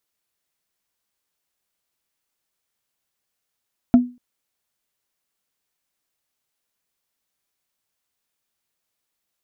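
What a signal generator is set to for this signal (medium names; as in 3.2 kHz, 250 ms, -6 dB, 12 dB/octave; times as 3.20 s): wood hit, length 0.24 s, lowest mode 246 Hz, decay 0.30 s, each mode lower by 12 dB, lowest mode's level -5 dB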